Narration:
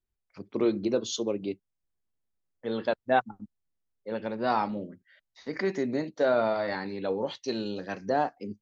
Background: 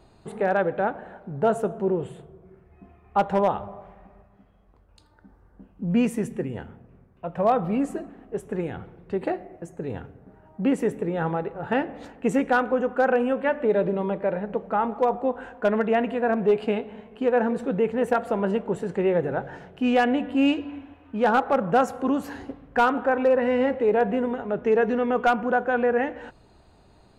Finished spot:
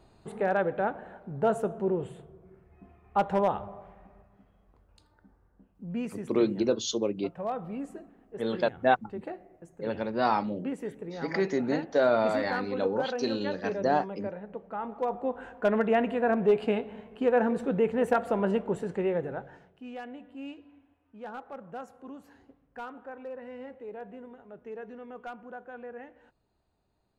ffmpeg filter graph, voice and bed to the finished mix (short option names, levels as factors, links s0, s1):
-filter_complex "[0:a]adelay=5750,volume=1.12[s0];[1:a]volume=1.88,afade=t=out:st=4.85:d=0.81:silence=0.398107,afade=t=in:st=14.76:d=1.02:silence=0.334965,afade=t=out:st=18.6:d=1.24:silence=0.125893[s1];[s0][s1]amix=inputs=2:normalize=0"